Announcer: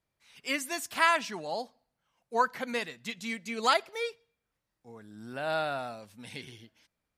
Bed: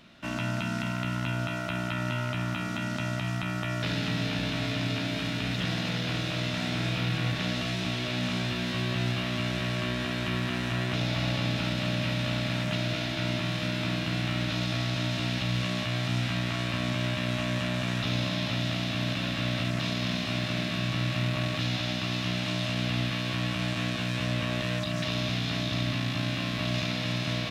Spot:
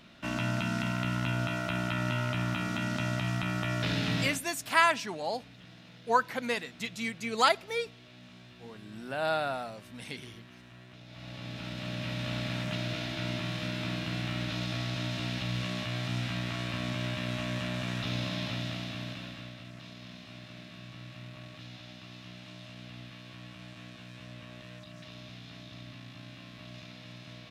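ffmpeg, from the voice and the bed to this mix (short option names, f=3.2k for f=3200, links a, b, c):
-filter_complex "[0:a]adelay=3750,volume=1dB[a];[1:a]volume=17.5dB,afade=t=out:st=4.21:d=0.2:silence=0.0794328,afade=t=in:st=11.06:d=1.33:silence=0.125893,afade=t=out:st=18.42:d=1.14:silence=0.223872[b];[a][b]amix=inputs=2:normalize=0"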